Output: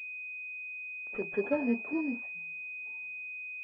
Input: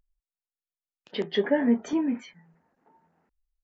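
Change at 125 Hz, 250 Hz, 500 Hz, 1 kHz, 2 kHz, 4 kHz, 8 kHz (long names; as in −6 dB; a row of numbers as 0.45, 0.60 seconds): −8.0 dB, −7.5 dB, −6.0 dB, −6.5 dB, +5.0 dB, below −25 dB, can't be measured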